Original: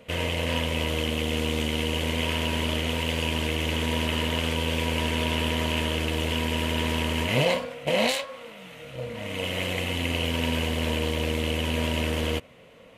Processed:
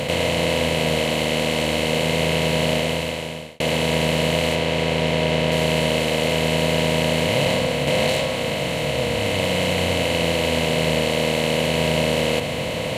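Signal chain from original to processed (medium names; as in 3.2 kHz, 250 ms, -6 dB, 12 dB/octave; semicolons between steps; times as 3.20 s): spectral levelling over time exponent 0.2; 4.55–5.52 s: treble shelf 7.2 kHz -10.5 dB; reverberation RT60 0.55 s, pre-delay 6 ms, DRR 8 dB; 2.73–3.60 s: fade out; trim -3 dB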